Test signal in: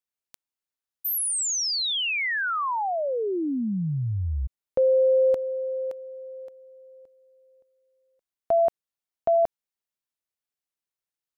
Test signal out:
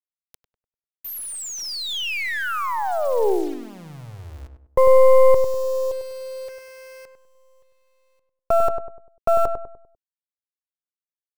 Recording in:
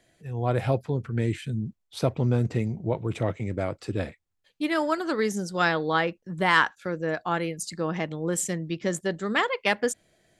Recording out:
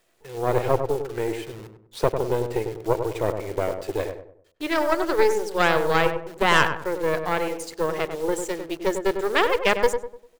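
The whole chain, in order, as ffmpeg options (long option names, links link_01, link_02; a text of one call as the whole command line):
ffmpeg -i in.wav -filter_complex "[0:a]acrossover=split=3100[link_01][link_02];[link_02]acompressor=threshold=-31dB:ratio=4:attack=1:release=60[link_03];[link_01][link_03]amix=inputs=2:normalize=0,lowshelf=frequency=290:width_type=q:width=3:gain=-11,acrusher=bits=8:dc=4:mix=0:aa=0.000001,aeval=exprs='0.473*(cos(1*acos(clip(val(0)/0.473,-1,1)))-cos(1*PI/2))+0.119*(cos(4*acos(clip(val(0)/0.473,-1,1)))-cos(4*PI/2))':channel_layout=same,asplit=2[link_04][link_05];[link_05]adelay=99,lowpass=frequency=1200:poles=1,volume=-6dB,asplit=2[link_06][link_07];[link_07]adelay=99,lowpass=frequency=1200:poles=1,volume=0.4,asplit=2[link_08][link_09];[link_09]adelay=99,lowpass=frequency=1200:poles=1,volume=0.4,asplit=2[link_10][link_11];[link_11]adelay=99,lowpass=frequency=1200:poles=1,volume=0.4,asplit=2[link_12][link_13];[link_13]adelay=99,lowpass=frequency=1200:poles=1,volume=0.4[link_14];[link_04][link_06][link_08][link_10][link_12][link_14]amix=inputs=6:normalize=0" out.wav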